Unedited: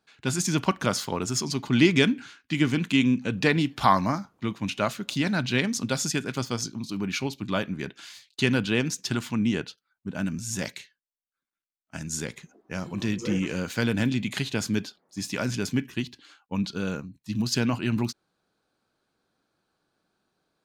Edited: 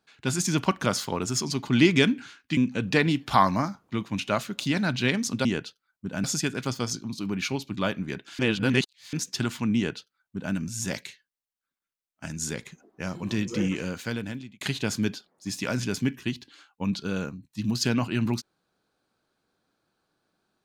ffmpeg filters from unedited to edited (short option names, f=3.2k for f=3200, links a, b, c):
-filter_complex "[0:a]asplit=7[a][b][c][d][e][f][g];[a]atrim=end=2.572[h];[b]atrim=start=3.068:end=5.952[i];[c]atrim=start=9.468:end=10.262[j];[d]atrim=start=5.948:end=8.102[k];[e]atrim=start=8.098:end=8.842,asetpts=PTS-STARTPTS,areverse[l];[f]atrim=start=8.838:end=14.32,asetpts=PTS-STARTPTS,afade=t=out:st=4.542:d=0.94[m];[g]atrim=start=14.32,asetpts=PTS-STARTPTS,afade=t=in:d=0.004:c=hsin[n];[h][i]acrossfade=d=0.004:c1=hsin:c2=hsin[o];[o][j]acrossfade=d=0.004:c1=hsin:c2=hsin[p];[p][k]acrossfade=d=0.004:c1=hsin:c2=hsin[q];[q][l]acrossfade=d=0.004:c1=hsin:c2=hsin[r];[m][n]concat=n=2:v=0:a=1[s];[r][s]acrossfade=d=0.004:c1=hsin:c2=hsin"